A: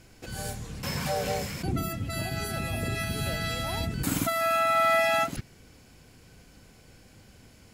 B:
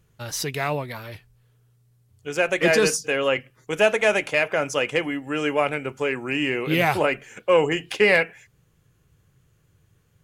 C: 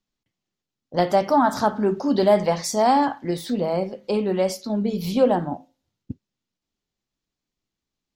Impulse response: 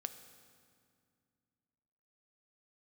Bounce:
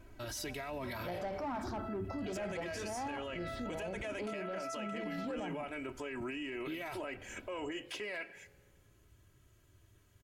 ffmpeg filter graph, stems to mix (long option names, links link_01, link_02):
-filter_complex "[0:a]lowpass=1700,acompressor=threshold=-52dB:ratio=1.5,flanger=delay=1.9:depth=9.4:regen=71:speed=0.2:shape=triangular,volume=0.5dB[link_01];[1:a]acompressor=threshold=-28dB:ratio=6,volume=-5.5dB,asplit=2[link_02][link_03];[link_03]volume=-10dB[link_04];[2:a]asoftclip=type=hard:threshold=-14dB,lowpass=frequency=3900:poles=1,adelay=100,volume=-13.5dB[link_05];[link_01][link_02]amix=inputs=2:normalize=0,aecho=1:1:3.1:0.97,acompressor=threshold=-34dB:ratio=6,volume=0dB[link_06];[3:a]atrim=start_sample=2205[link_07];[link_04][link_07]afir=irnorm=-1:irlink=0[link_08];[link_05][link_06][link_08]amix=inputs=3:normalize=0,alimiter=level_in=8.5dB:limit=-24dB:level=0:latency=1:release=12,volume=-8.5dB"